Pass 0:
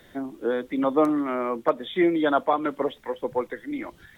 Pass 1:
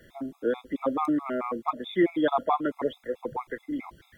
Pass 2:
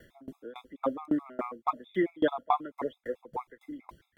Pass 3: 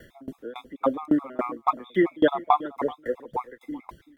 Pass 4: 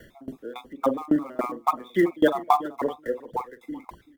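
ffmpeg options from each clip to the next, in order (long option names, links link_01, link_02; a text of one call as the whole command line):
ffmpeg -i in.wav -af "equalizer=frequency=63:width_type=o:width=2.7:gain=4,afftfilt=real='re*gt(sin(2*PI*4.6*pts/sr)*(1-2*mod(floor(b*sr/1024/680),2)),0)':imag='im*gt(sin(2*PI*4.6*pts/sr)*(1-2*mod(floor(b*sr/1024/680),2)),0)':win_size=1024:overlap=0.75,volume=-1dB" out.wav
ffmpeg -i in.wav -af "aeval=exprs='val(0)*pow(10,-26*if(lt(mod(3.6*n/s,1),2*abs(3.6)/1000),1-mod(3.6*n/s,1)/(2*abs(3.6)/1000),(mod(3.6*n/s,1)-2*abs(3.6)/1000)/(1-2*abs(3.6)/1000))/20)':channel_layout=same,volume=1.5dB" out.wav
ffmpeg -i in.wav -af "aecho=1:1:382:0.1,volume=6.5dB" out.wav
ffmpeg -i in.wav -filter_complex "[0:a]acrossover=split=1200[link_01][link_02];[link_01]asplit=2[link_03][link_04];[link_04]adelay=46,volume=-10.5dB[link_05];[link_03][link_05]amix=inputs=2:normalize=0[link_06];[link_02]acrusher=bits=3:mode=log:mix=0:aa=0.000001[link_07];[link_06][link_07]amix=inputs=2:normalize=0" out.wav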